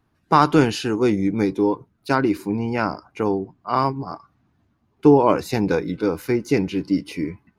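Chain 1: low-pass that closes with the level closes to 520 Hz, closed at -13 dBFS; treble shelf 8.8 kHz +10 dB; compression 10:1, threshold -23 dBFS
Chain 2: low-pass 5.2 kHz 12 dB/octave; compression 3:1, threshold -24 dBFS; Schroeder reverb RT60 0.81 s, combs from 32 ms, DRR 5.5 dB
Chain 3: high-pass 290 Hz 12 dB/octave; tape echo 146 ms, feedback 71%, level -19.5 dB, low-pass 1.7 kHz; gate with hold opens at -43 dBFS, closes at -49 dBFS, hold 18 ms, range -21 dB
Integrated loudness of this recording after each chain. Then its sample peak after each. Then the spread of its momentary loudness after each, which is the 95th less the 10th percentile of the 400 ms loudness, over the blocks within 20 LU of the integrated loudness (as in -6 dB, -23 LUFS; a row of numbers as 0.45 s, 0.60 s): -29.5 LUFS, -27.5 LUFS, -22.5 LUFS; -10.5 dBFS, -9.5 dBFS, -2.0 dBFS; 4 LU, 6 LU, 11 LU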